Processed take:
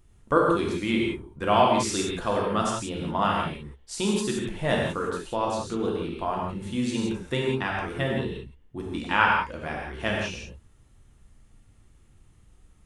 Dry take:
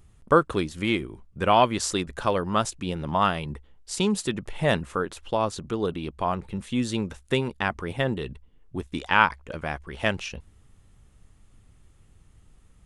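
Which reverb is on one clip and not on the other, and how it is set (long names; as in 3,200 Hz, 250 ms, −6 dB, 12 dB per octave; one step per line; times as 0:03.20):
reverb whose tail is shaped and stops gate 200 ms flat, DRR −2.5 dB
level −5 dB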